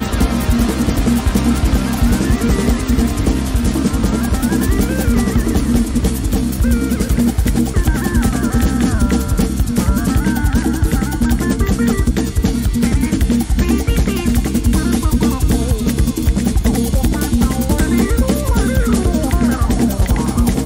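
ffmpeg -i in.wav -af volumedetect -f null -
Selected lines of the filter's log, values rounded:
mean_volume: -14.2 dB
max_volume: -4.3 dB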